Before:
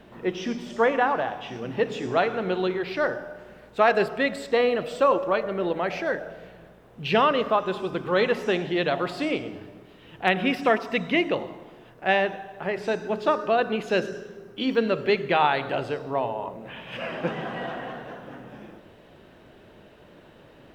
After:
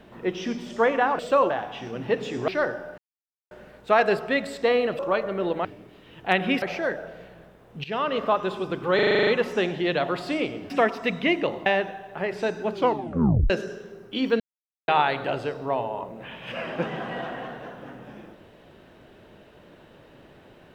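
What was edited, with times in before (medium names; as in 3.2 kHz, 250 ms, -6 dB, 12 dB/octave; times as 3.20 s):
2.17–2.90 s: delete
3.40 s: insert silence 0.53 s
4.88–5.19 s: move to 1.19 s
7.07–7.51 s: fade in linear, from -16 dB
8.18 s: stutter 0.04 s, 9 plays
9.61–10.58 s: move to 5.85 s
11.54–12.11 s: delete
13.17 s: tape stop 0.78 s
14.85–15.33 s: mute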